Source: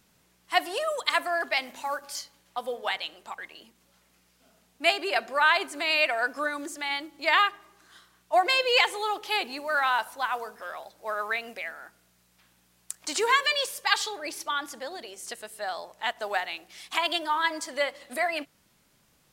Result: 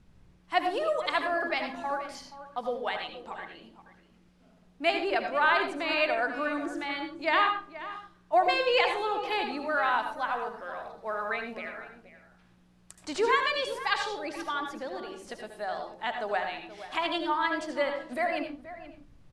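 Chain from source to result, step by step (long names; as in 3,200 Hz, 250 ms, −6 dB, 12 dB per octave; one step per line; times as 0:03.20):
Chebyshev low-pass filter 12,000 Hz, order 6
RIAA equalisation playback
slap from a distant wall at 82 metres, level −14 dB
on a send at −5.5 dB: convolution reverb RT60 0.30 s, pre-delay 71 ms
on the sum: level −1.5 dB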